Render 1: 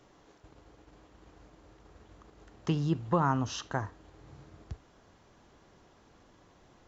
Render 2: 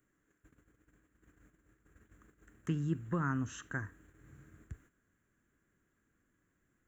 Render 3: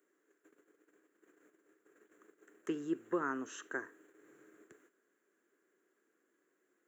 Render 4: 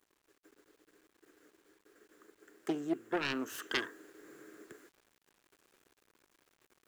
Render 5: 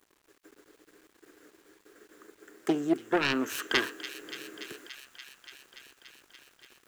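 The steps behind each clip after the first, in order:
bass shelf 340 Hz -5.5 dB; gate -58 dBFS, range -11 dB; FFT filter 280 Hz 0 dB, 840 Hz -20 dB, 1.6 kHz +2 dB, 5 kHz -23 dB, 8.5 kHz +13 dB
ladder high-pass 340 Hz, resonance 55%; trim +9.5 dB
self-modulated delay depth 0.4 ms; word length cut 12-bit, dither none; gain riding 0.5 s; trim +4.5 dB
feedback echo behind a high-pass 288 ms, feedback 81%, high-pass 2.2 kHz, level -11 dB; trim +7.5 dB

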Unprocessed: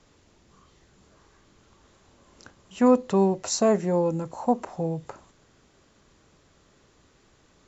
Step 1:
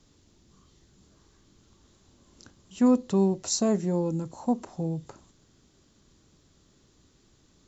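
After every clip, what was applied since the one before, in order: high-order bell 1.1 kHz -8 dB 2.9 oct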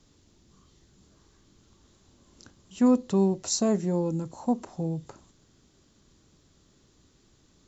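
no audible change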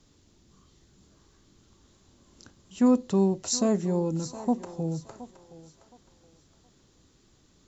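thinning echo 719 ms, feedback 32%, high-pass 410 Hz, level -13.5 dB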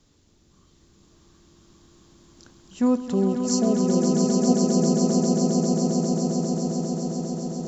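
time-frequency box 3.14–5.02 s, 790–4200 Hz -17 dB; echo with a slow build-up 134 ms, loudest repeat 8, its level -6 dB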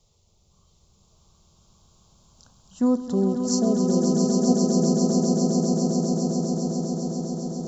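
touch-sensitive phaser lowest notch 270 Hz, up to 2.4 kHz, full sweep at -27 dBFS

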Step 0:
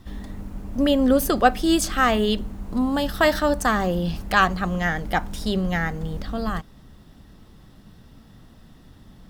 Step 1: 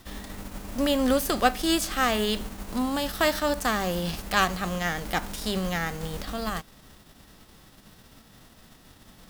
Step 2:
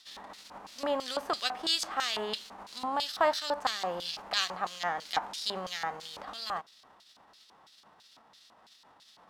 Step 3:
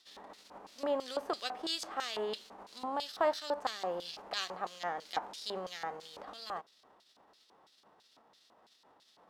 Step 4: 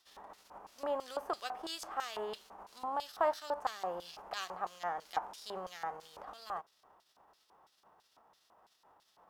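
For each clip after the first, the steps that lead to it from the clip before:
formants flattened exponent 0.6; trim -5 dB
LFO band-pass square 3 Hz 910–4300 Hz; trim +4.5 dB
peaking EQ 420 Hz +9 dB 1.5 oct; trim -8 dB
graphic EQ 125/250/500/2000/4000/8000 Hz -4/-11/-6/-6/-11/-5 dB; trim +4.5 dB

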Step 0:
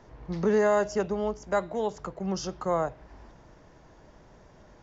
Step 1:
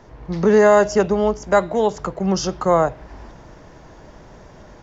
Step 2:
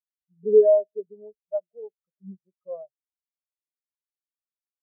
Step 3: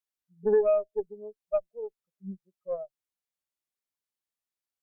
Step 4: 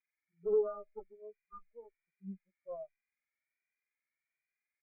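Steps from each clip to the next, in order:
level rider gain up to 4 dB; trim +7 dB
spectral contrast expander 4:1; trim -2.5 dB
compression 5:1, threshold -23 dBFS, peak gain reduction 12 dB; Chebyshev shaper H 4 -23 dB, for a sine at -17 dBFS; trim +2 dB
knee-point frequency compression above 1.2 kHz 4:1; spectral selection erased 1.39–1.68 s, 390–1000 Hz; endless flanger 2 ms +1.3 Hz; trim -5.5 dB

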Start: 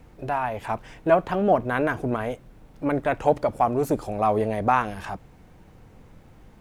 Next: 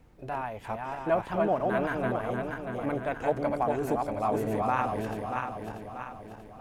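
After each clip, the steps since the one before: backward echo that repeats 318 ms, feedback 67%, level -2.5 dB; trim -8 dB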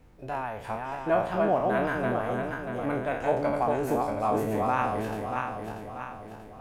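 spectral sustain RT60 0.52 s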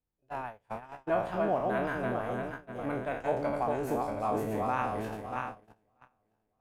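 gate -32 dBFS, range -29 dB; trim -4.5 dB

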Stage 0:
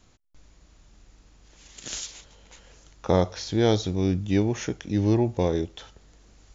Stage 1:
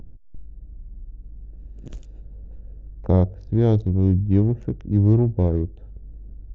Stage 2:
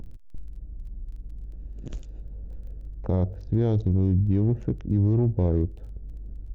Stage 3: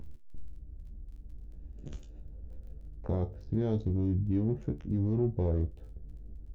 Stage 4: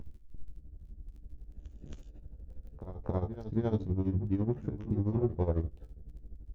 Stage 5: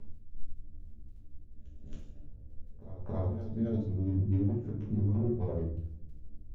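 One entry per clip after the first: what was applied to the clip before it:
local Wiener filter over 41 samples; tilt EQ -4.5 dB/octave; upward compressor, threshold -26 dBFS; trim -5.5 dB
peak limiter -14.5 dBFS, peak gain reduction 9 dB; crackle 11 per s -48 dBFS; trim +1 dB
feedback comb 73 Hz, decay 0.18 s, harmonics all, mix 90%
dynamic bell 1.1 kHz, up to +8 dB, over -54 dBFS, Q 1.1; tremolo 12 Hz, depth 76%; reverse echo 273 ms -12.5 dB; trim +1.5 dB
rotary cabinet horn 0.85 Hz, later 6.3 Hz, at 3.47 s; simulated room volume 69 m³, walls mixed, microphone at 1.2 m; trim -7.5 dB

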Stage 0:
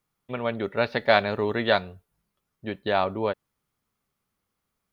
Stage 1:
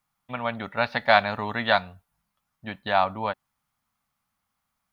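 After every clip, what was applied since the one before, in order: FFT filter 260 Hz 0 dB, 380 Hz -13 dB, 770 Hz +7 dB, 2.9 kHz +3 dB; trim -2 dB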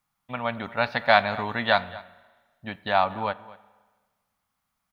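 echo from a far wall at 40 m, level -19 dB; spring tank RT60 1.4 s, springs 34/40 ms, chirp 25 ms, DRR 18.5 dB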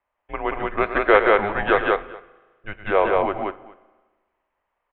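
mistuned SSB -210 Hz 200–2900 Hz; loudspeakers at several distances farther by 38 m -11 dB, 62 m -2 dB; trim +3 dB

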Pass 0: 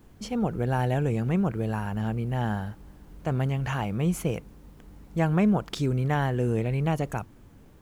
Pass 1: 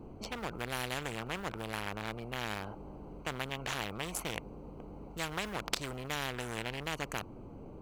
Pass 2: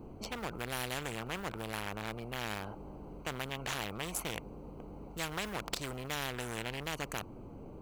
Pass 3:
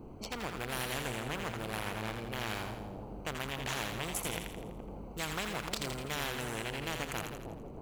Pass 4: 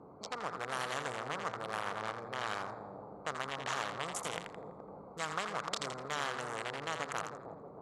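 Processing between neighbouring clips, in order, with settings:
local Wiener filter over 25 samples; spectrum-flattening compressor 4:1
treble shelf 9 kHz +6 dB; saturation -23 dBFS, distortion -16 dB
two-band feedback delay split 810 Hz, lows 315 ms, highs 83 ms, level -5 dB
local Wiener filter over 15 samples; cabinet simulation 210–8700 Hz, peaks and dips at 230 Hz -9 dB, 340 Hz -8 dB, 1.2 kHz +7 dB, 2.5 kHz -5 dB; trim +1 dB

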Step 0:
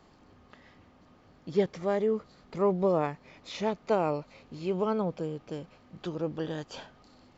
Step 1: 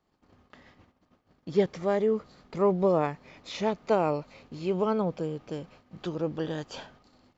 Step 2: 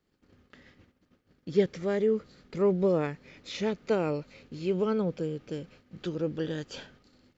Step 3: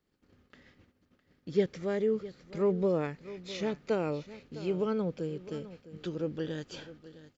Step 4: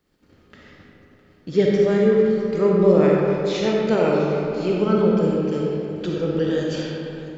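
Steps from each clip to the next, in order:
gate -56 dBFS, range -19 dB; trim +2 dB
high-order bell 860 Hz -9 dB 1.1 oct
delay 658 ms -16 dB; trim -3 dB
algorithmic reverb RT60 2.7 s, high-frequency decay 0.5×, pre-delay 10 ms, DRR -3 dB; trim +8.5 dB

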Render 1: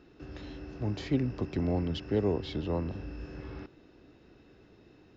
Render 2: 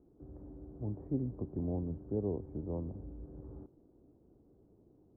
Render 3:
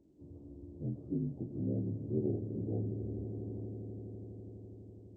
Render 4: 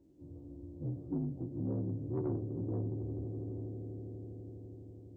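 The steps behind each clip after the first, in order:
Bessel low-pass 580 Hz, order 6; trim -5.5 dB
frequency axis rescaled in octaves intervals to 79%; echo with a slow build-up 83 ms, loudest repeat 8, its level -16 dB; trim +1 dB
spectral sustain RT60 0.35 s; saturation -27.5 dBFS, distortion -18 dB; comb of notches 210 Hz; trim +1 dB

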